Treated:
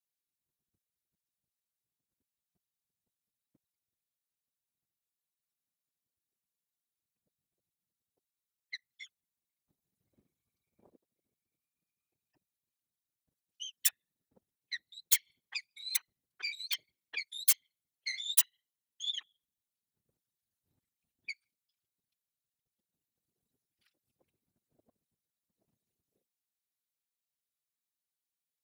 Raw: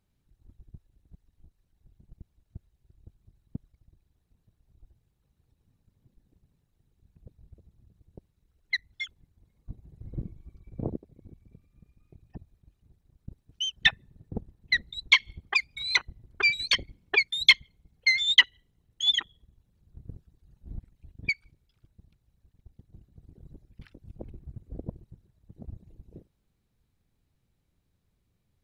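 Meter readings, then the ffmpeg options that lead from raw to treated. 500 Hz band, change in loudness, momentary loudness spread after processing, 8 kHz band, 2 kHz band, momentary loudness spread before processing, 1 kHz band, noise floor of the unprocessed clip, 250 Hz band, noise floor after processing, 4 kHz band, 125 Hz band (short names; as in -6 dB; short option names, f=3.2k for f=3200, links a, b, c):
under -25 dB, -7.5 dB, 19 LU, +8.0 dB, -19.0 dB, 21 LU, -19.0 dB, -75 dBFS, under -30 dB, under -85 dBFS, -14.0 dB, under -40 dB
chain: -af "aeval=exprs='(mod(3.35*val(0)+1,2)-1)/3.35':c=same,afftfilt=real='hypot(re,im)*cos(2*PI*random(0))':imag='hypot(re,im)*sin(2*PI*random(1))':win_size=512:overlap=0.75,aderivative"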